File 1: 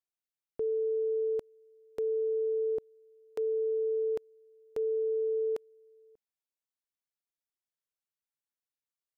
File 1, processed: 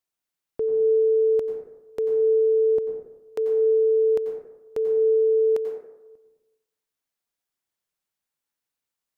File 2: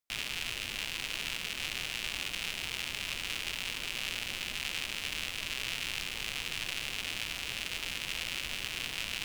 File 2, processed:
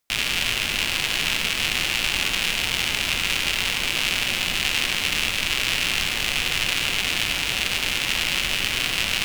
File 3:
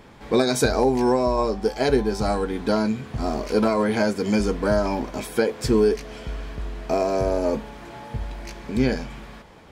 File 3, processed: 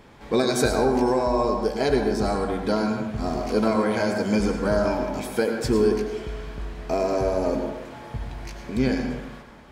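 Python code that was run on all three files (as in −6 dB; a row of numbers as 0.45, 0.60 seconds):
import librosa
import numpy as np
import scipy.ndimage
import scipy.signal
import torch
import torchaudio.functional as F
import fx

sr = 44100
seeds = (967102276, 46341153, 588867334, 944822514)

y = fx.rev_plate(x, sr, seeds[0], rt60_s=1.0, hf_ratio=0.4, predelay_ms=80, drr_db=4.0)
y = y * 10.0 ** (-24 / 20.0) / np.sqrt(np.mean(np.square(y)))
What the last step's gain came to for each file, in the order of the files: +7.0, +12.5, −2.0 decibels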